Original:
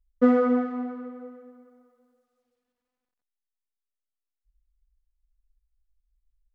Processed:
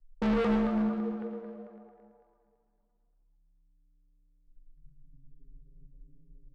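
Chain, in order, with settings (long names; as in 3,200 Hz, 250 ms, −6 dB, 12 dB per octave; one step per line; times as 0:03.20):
spectral tilt −4 dB per octave
auto-filter low-pass saw down 9 Hz 470–1,800 Hz
frequency shifter −34 Hz
hard clipping −22 dBFS, distortion −3 dB
high-frequency loss of the air 74 metres
echo with shifted repeats 267 ms, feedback 40%, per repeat +130 Hz, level −15 dB
four-comb reverb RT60 0.96 s, combs from 30 ms, DRR 7.5 dB
level −4.5 dB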